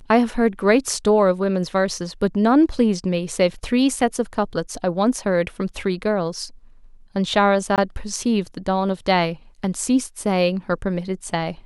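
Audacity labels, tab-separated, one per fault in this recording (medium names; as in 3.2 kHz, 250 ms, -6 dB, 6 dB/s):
7.760000	7.780000	dropout 18 ms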